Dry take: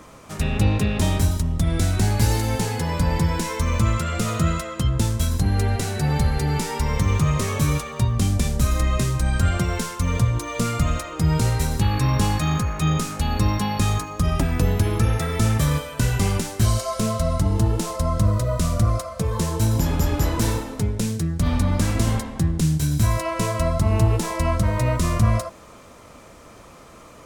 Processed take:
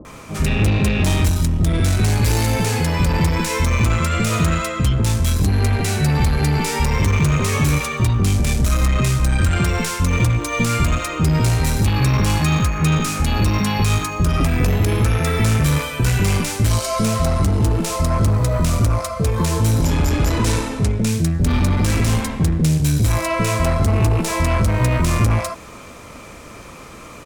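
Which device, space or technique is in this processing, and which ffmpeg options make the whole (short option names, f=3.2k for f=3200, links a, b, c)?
saturation between pre-emphasis and de-emphasis: -filter_complex "[0:a]asettb=1/sr,asplit=3[a][b][c];[a]atrim=end=19.774[d];[b]atrim=start=19.77:end=21.02,asetpts=PTS-STARTPTS,afade=t=in:d=0.004:c=qsin,afade=t=out:st=1.246:d=0.004:c=qsin,lowpass=f=11k:w=0.5412,lowpass=f=11k:w=1.3066[e];[c]atrim=start=21.016[f];[d][e]acrossfade=d=0.004:c1=hsin:c2=qsin[g];[g][f]acrossfade=d=0.004:c1=qsin:c2=hsin,highshelf=f=3.9k:g=6,asoftclip=type=tanh:threshold=-19.5dB,equalizer=f=2.4k:t=o:w=0.23:g=5.5,highshelf=f=3.9k:g=-6,acrossover=split=660[h][i];[i]adelay=50[j];[h][j]amix=inputs=2:normalize=0,volume=8dB"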